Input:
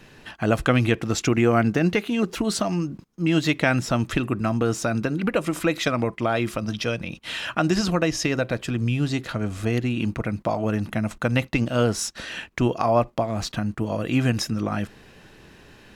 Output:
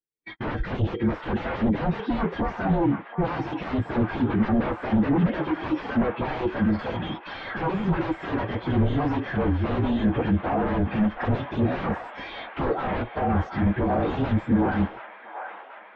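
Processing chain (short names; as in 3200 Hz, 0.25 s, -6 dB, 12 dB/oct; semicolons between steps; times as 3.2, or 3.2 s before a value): inharmonic rescaling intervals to 112%; gate -43 dBFS, range -39 dB; tilt shelf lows -8 dB, about 1300 Hz; in parallel at -1.5 dB: limiter -20 dBFS, peak gain reduction 9 dB; on the sum: compressor 1.5:1, threshold -35 dBFS, peak gain reduction 7 dB; small resonant body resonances 310/440/1600/3200 Hz, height 8 dB, ringing for 25 ms; sine folder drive 12 dB, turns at -16 dBFS; tape spacing loss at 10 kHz 40 dB; on a send: band-limited delay 0.73 s, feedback 79%, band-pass 1400 Hz, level -5 dB; on the sum: spectral expander 1.5:1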